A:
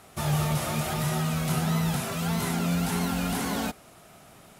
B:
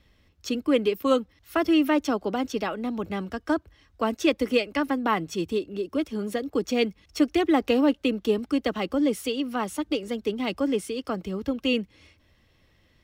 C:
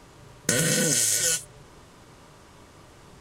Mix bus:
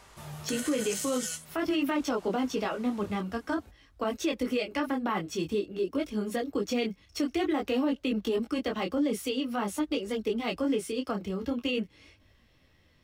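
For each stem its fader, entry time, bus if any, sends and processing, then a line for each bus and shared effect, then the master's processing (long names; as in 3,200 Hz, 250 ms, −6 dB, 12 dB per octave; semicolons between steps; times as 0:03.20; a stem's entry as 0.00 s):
−13.5 dB, 0.00 s, no send, automatic ducking −17 dB, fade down 1.70 s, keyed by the second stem
+2.5 dB, 0.00 s, no send, micro pitch shift up and down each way 17 cents
−1.5 dB, 0.00 s, no send, downward compressor 6 to 1, threshold −31 dBFS, peak gain reduction 12 dB; high-pass filter 620 Hz 12 dB per octave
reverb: not used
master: brickwall limiter −20.5 dBFS, peak gain reduction 9.5 dB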